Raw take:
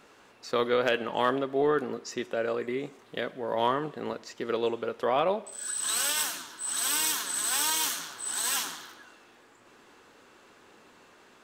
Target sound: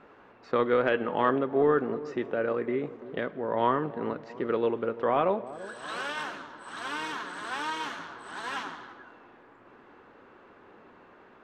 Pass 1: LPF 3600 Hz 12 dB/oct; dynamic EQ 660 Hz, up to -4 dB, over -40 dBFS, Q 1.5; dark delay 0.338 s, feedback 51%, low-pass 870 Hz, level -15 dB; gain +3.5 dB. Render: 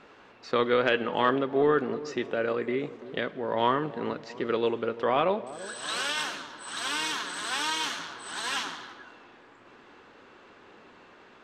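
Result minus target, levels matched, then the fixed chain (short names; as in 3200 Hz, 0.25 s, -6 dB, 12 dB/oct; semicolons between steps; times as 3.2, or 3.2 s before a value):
4000 Hz band +9.0 dB
LPF 1700 Hz 12 dB/oct; dynamic EQ 660 Hz, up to -4 dB, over -40 dBFS, Q 1.5; dark delay 0.338 s, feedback 51%, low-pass 870 Hz, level -15 dB; gain +3.5 dB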